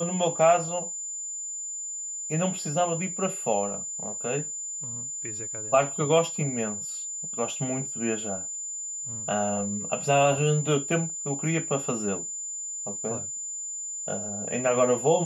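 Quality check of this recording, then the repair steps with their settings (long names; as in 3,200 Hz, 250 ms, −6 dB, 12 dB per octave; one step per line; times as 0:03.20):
whistle 7,100 Hz −32 dBFS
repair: notch filter 7,100 Hz, Q 30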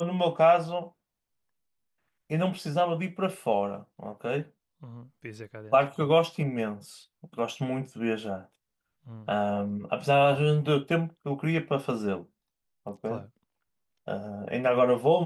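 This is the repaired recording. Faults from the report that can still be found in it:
none of them is left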